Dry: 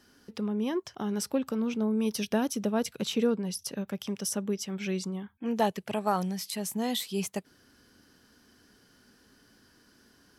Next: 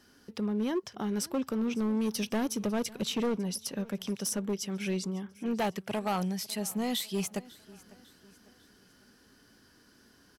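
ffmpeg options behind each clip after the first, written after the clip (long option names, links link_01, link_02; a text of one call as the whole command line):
ffmpeg -i in.wav -af "asoftclip=type=hard:threshold=-25.5dB,aecho=1:1:550|1100|1650:0.0841|0.0387|0.0178" out.wav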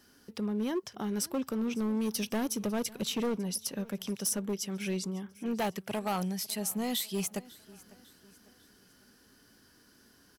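ffmpeg -i in.wav -af "highshelf=frequency=9700:gain=9,volume=-1.5dB" out.wav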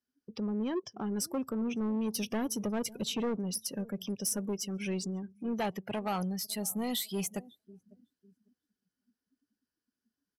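ffmpeg -i in.wav -filter_complex "[0:a]afftdn=noise_reduction=32:noise_floor=-45,asplit=2[link_01][link_02];[link_02]asoftclip=type=tanh:threshold=-36dB,volume=-4.5dB[link_03];[link_01][link_03]amix=inputs=2:normalize=0,volume=-3dB" out.wav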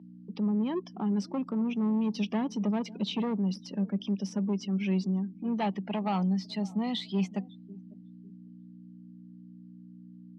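ffmpeg -i in.wav -af "aeval=exprs='val(0)+0.00631*(sin(2*PI*60*n/s)+sin(2*PI*2*60*n/s)/2+sin(2*PI*3*60*n/s)/3+sin(2*PI*4*60*n/s)/4+sin(2*PI*5*60*n/s)/5)':channel_layout=same,highpass=frequency=190:width=0.5412,highpass=frequency=190:width=1.3066,equalizer=frequency=190:width_type=q:width=4:gain=10,equalizer=frequency=500:width_type=q:width=4:gain=-5,equalizer=frequency=900:width_type=q:width=4:gain=4,equalizer=frequency=1500:width_type=q:width=4:gain=-7,lowpass=frequency=4300:width=0.5412,lowpass=frequency=4300:width=1.3066,volume=1.5dB" out.wav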